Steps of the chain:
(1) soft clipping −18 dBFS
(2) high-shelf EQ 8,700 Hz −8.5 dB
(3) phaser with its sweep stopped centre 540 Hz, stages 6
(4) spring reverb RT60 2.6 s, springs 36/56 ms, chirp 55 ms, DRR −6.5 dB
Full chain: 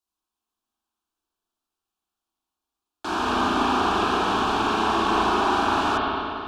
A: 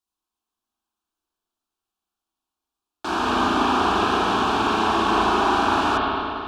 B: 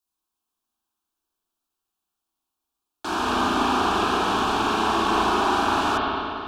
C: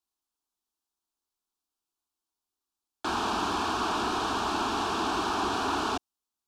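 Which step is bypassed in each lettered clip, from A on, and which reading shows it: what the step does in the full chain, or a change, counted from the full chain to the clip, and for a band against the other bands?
1, distortion level −17 dB
2, 8 kHz band +3.0 dB
4, change in momentary loudness spread −1 LU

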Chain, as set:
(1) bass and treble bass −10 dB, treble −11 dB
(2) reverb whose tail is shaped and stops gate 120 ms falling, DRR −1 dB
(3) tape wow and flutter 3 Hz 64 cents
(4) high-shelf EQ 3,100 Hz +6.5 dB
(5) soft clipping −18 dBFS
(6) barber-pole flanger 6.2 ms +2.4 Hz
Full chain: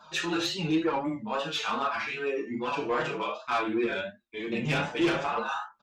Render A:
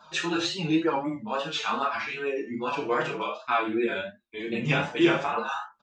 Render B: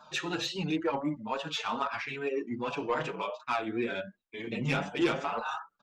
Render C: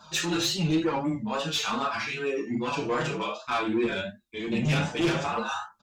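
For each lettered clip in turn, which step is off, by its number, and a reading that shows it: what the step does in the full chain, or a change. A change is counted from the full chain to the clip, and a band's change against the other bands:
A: 5, distortion level −13 dB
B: 2, change in crest factor +3.0 dB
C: 1, 8 kHz band +6.5 dB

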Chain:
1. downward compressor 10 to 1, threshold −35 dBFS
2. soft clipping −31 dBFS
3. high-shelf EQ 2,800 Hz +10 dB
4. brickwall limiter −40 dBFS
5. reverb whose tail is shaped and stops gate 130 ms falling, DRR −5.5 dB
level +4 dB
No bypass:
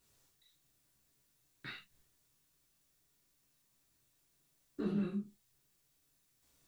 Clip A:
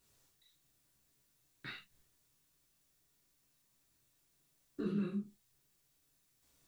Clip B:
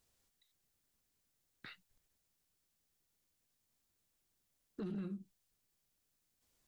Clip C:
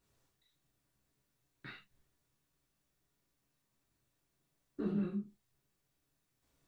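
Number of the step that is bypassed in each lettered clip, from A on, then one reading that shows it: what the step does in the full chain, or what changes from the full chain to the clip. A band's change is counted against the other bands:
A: 2, distortion level −19 dB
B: 5, change in momentary loudness spread +1 LU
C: 3, 4 kHz band −6.0 dB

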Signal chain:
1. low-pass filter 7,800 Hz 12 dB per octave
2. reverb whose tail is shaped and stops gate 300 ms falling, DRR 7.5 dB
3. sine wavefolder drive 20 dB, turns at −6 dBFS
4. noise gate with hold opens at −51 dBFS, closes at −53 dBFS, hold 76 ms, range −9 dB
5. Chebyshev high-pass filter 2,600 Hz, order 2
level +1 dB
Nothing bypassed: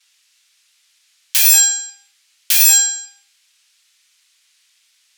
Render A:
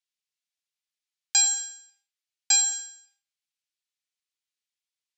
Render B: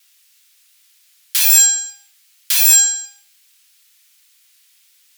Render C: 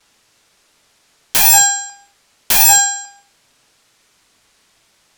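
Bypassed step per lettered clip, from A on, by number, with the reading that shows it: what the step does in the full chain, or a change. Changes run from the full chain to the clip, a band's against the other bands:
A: 3, change in crest factor +4.0 dB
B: 1, 8 kHz band +1.5 dB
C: 5, 1 kHz band +19.0 dB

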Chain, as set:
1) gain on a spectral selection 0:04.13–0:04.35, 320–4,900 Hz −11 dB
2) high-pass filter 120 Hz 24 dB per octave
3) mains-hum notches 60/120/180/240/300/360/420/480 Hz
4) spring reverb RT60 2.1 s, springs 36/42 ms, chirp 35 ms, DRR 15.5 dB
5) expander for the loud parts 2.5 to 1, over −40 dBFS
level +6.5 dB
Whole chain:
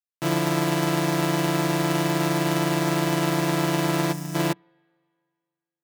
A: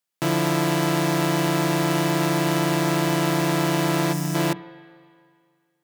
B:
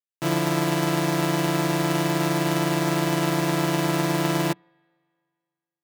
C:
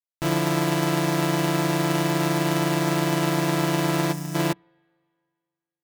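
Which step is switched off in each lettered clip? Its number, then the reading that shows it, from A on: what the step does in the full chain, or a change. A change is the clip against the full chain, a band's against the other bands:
5, change in momentary loudness spread −1 LU
1, change in momentary loudness spread −2 LU
2, change in crest factor −5.5 dB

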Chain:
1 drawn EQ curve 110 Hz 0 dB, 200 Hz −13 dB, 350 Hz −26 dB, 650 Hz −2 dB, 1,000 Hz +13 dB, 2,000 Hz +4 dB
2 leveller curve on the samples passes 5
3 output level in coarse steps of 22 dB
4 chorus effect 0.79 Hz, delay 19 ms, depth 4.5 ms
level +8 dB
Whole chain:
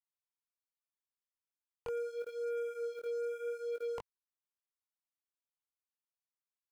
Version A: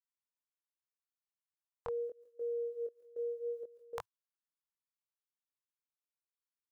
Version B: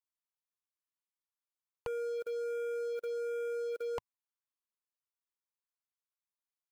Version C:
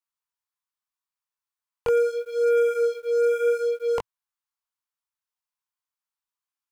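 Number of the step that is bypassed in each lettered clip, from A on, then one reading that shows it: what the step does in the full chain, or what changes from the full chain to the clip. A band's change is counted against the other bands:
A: 2, change in crest factor +10.0 dB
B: 4, change in integrated loudness +2.0 LU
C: 3, change in momentary loudness spread +3 LU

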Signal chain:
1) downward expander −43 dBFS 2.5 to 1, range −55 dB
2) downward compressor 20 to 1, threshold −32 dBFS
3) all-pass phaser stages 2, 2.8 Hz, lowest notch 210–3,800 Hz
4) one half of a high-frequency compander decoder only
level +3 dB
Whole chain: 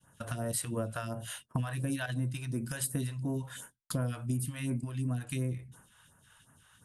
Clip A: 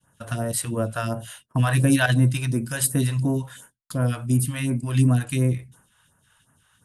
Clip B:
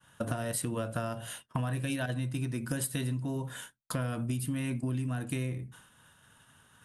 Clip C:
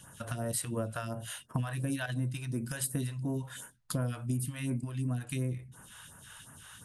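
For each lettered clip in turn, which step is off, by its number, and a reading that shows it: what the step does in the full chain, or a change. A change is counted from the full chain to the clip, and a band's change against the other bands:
2, average gain reduction 10.0 dB
3, change in momentary loudness spread −1 LU
1, change in momentary loudness spread +10 LU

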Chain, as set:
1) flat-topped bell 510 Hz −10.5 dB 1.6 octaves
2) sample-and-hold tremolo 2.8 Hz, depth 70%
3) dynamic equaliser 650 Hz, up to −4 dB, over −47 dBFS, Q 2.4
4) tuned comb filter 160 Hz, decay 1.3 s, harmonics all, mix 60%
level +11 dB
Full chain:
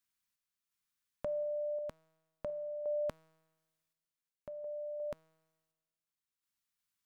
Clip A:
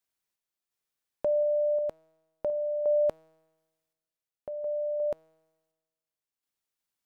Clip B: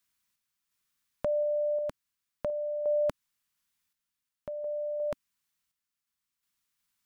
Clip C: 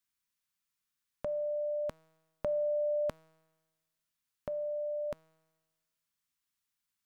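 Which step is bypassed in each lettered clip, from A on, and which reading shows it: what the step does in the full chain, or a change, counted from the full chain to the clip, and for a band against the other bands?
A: 1, change in crest factor −5.5 dB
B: 4, change in integrated loudness +7.5 LU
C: 2, change in integrated loudness +4.5 LU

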